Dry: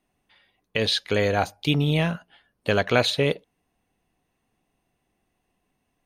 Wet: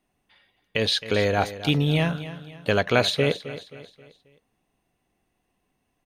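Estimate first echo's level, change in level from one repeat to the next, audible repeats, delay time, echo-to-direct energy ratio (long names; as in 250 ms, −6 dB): −14.0 dB, −8.0 dB, 3, 266 ms, −13.0 dB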